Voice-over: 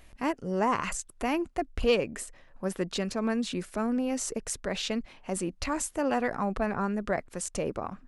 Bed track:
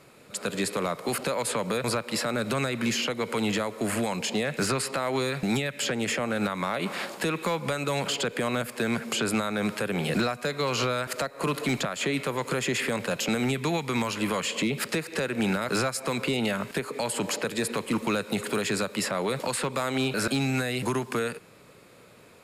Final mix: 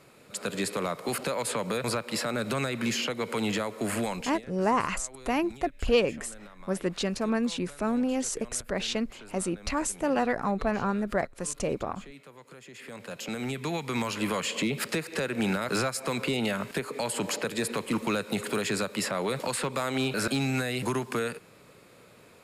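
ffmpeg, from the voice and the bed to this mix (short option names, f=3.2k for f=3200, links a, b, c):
-filter_complex "[0:a]adelay=4050,volume=1.5dB[a];[1:a]volume=17.5dB,afade=t=out:st=4.07:d=0.35:silence=0.112202,afade=t=in:st=12.72:d=1.45:silence=0.105925[b];[a][b]amix=inputs=2:normalize=0"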